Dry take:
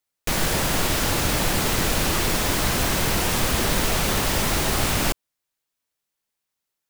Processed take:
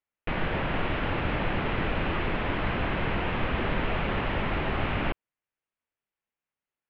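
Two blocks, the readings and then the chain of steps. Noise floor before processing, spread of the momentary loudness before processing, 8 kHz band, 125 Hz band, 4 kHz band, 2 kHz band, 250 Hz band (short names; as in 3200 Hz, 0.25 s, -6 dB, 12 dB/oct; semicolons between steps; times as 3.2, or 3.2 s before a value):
-83 dBFS, 1 LU, under -40 dB, -4.5 dB, -13.0 dB, -4.5 dB, -4.5 dB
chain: steep low-pass 2900 Hz 36 dB/oct; gain -4.5 dB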